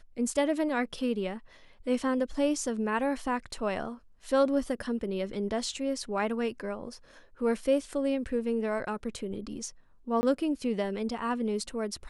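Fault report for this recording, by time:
10.21–10.23 s: dropout 20 ms

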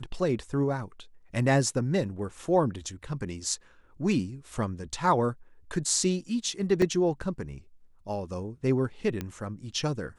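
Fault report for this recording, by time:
6.82 s: dropout 2.1 ms
9.21 s: pop -19 dBFS

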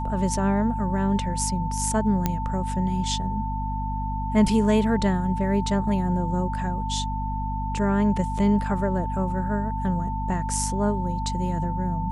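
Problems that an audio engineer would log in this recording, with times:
hum 50 Hz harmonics 5 -29 dBFS
whine 890 Hz -30 dBFS
2.26 s: pop -9 dBFS

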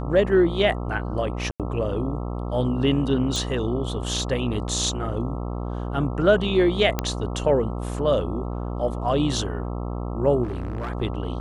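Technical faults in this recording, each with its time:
buzz 60 Hz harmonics 22 -29 dBFS
1.51–1.60 s: dropout 87 ms
3.36 s: pop
6.99 s: pop -8 dBFS
10.43–10.90 s: clipped -25 dBFS

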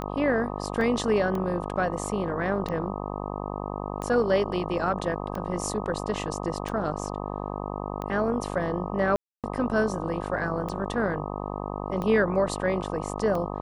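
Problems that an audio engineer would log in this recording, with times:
buzz 50 Hz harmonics 25 -33 dBFS
tick 45 rpm -20 dBFS
0.81 s: dropout 2.2 ms
9.16–9.44 s: dropout 277 ms

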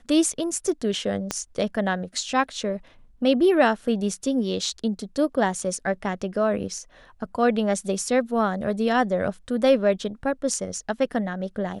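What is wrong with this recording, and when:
1.31 s: pop -10 dBFS

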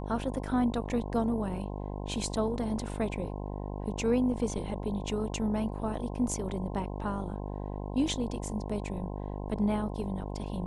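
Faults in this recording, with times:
buzz 50 Hz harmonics 21 -37 dBFS

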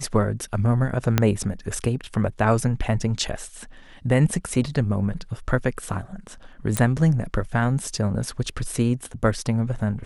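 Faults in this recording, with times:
1.18 s: pop -3 dBFS
6.77 s: pop -7 dBFS

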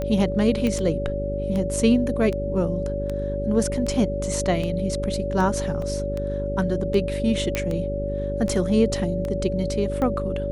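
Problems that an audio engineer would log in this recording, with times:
buzz 50 Hz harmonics 9 -29 dBFS
tick 78 rpm -17 dBFS
whine 570 Hz -27 dBFS
0.67 s: pop -13 dBFS
5.82 s: dropout 3.1 ms
7.55 s: pop -9 dBFS

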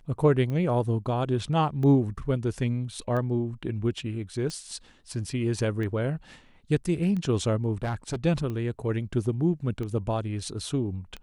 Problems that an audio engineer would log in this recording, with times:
tick 45 rpm -23 dBFS
7.83–8.16 s: clipped -25 dBFS

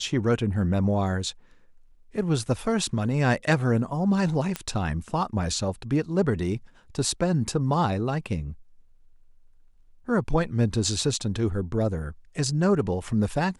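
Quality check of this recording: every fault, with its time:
4.56 s: pop -13 dBFS

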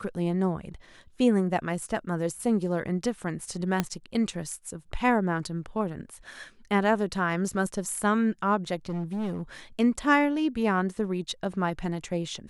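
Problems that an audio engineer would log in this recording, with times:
3.80 s: pop -10 dBFS
8.89–9.42 s: clipped -27.5 dBFS

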